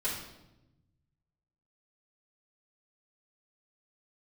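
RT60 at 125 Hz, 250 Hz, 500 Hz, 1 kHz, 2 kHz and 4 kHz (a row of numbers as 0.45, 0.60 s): 2.0, 1.4, 1.1, 0.85, 0.75, 0.75 s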